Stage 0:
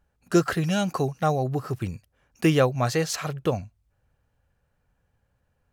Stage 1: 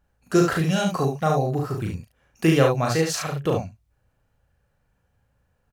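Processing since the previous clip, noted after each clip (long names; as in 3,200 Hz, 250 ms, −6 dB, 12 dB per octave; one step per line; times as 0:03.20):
ambience of single reflections 37 ms −3.5 dB, 71 ms −4.5 dB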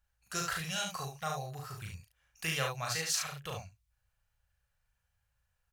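guitar amp tone stack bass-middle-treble 10-0-10
level −2.5 dB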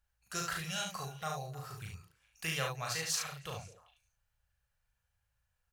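echo through a band-pass that steps 102 ms, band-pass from 160 Hz, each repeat 1.4 octaves, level −11 dB
level −2 dB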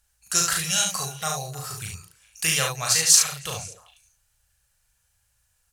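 parametric band 8,700 Hz +14.5 dB 1.9 octaves
level +8 dB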